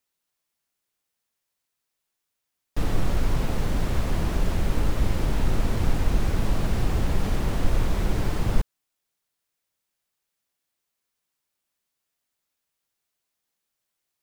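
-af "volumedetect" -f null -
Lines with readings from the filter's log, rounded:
mean_volume: -24.2 dB
max_volume: -7.8 dB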